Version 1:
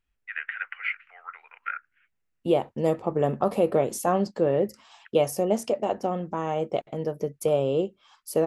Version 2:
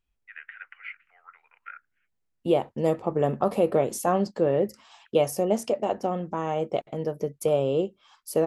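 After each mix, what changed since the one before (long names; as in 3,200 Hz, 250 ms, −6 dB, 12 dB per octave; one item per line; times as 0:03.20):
first voice −10.0 dB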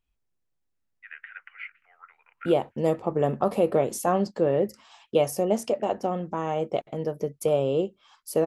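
first voice: entry +0.75 s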